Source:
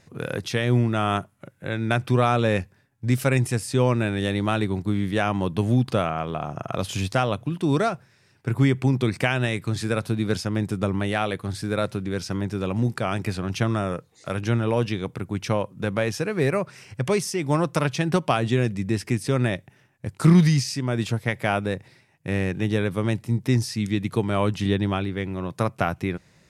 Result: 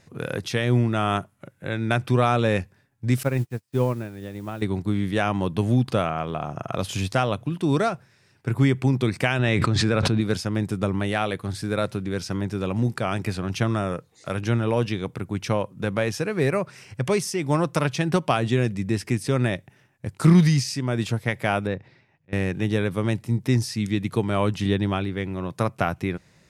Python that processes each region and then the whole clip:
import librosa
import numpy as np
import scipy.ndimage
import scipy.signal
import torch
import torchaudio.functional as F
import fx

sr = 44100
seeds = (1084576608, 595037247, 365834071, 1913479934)

y = fx.chain(x, sr, fx.lowpass(hz=1300.0, slope=6),
    fx.quant_dither(seeds[0], bits=8, dither='triangular'),
    fx.upward_expand(threshold_db=-41.0, expansion=2.5), at=(3.23, 4.62))
y = fx.chain(y, sr, fx.air_absorb(metres=100.0),
    fx.env_flatten(amount_pct=100), at=(9.39, 10.21))
y = fx.chain(y, sr, fx.auto_swell(attack_ms=552.0),
    fx.air_absorb(metres=170.0), at=(21.67, 22.33))